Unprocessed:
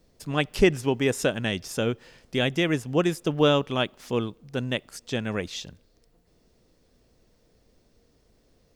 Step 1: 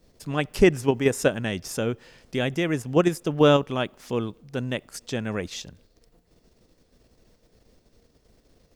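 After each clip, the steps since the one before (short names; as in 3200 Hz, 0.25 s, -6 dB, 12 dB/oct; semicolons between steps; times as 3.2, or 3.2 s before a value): dynamic EQ 3500 Hz, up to -5 dB, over -43 dBFS, Q 1.3; in parallel at +0.5 dB: level quantiser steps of 21 dB; on the sum: gain -1.5 dB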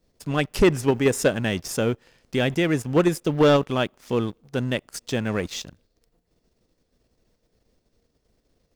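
sample leveller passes 2; gain -4 dB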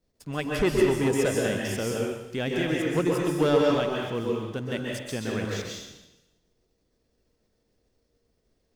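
plate-style reverb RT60 0.97 s, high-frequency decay 1×, pre-delay 0.115 s, DRR -2 dB; gain -7.5 dB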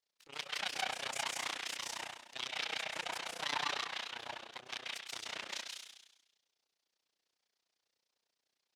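full-wave rectifier; band-pass 3800 Hz, Q 0.87; AM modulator 30 Hz, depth 85%; gain +3 dB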